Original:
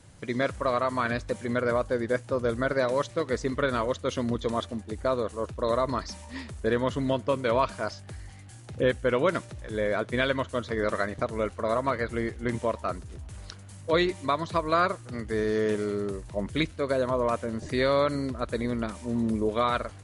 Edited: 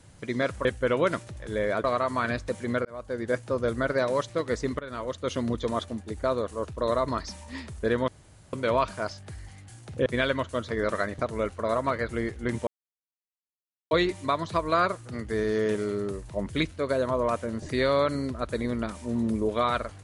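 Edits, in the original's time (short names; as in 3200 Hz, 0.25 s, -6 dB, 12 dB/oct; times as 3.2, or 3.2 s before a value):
1.66–2.15 fade in
3.6–4.13 fade in, from -18 dB
6.89–7.34 room tone
8.87–10.06 move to 0.65
12.67–13.91 mute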